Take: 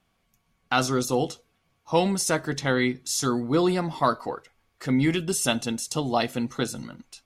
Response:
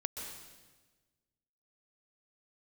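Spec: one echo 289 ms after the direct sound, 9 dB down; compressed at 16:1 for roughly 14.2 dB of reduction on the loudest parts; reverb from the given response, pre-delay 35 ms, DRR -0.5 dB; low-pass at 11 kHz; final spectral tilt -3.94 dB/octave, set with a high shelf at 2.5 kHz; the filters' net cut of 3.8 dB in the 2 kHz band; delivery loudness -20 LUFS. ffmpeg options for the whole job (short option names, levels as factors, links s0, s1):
-filter_complex "[0:a]lowpass=11000,equalizer=f=2000:t=o:g=-7,highshelf=f=2500:g=3.5,acompressor=threshold=0.0251:ratio=16,aecho=1:1:289:0.355,asplit=2[s0][s1];[1:a]atrim=start_sample=2205,adelay=35[s2];[s1][s2]afir=irnorm=-1:irlink=0,volume=0.944[s3];[s0][s3]amix=inputs=2:normalize=0,volume=4.73"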